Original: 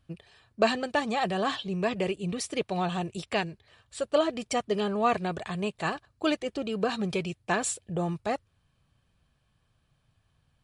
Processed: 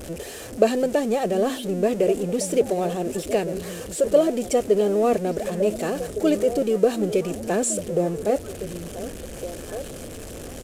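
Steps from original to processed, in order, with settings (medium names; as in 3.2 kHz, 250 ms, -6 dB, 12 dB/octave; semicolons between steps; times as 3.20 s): jump at every zero crossing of -30 dBFS; graphic EQ 125/250/500/1000/2000/4000/8000 Hz -9/+4/+12/-10/-3/-7/+5 dB; repeats whose band climbs or falls 730 ms, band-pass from 200 Hz, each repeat 1.4 oct, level -7 dB; resampled via 32 kHz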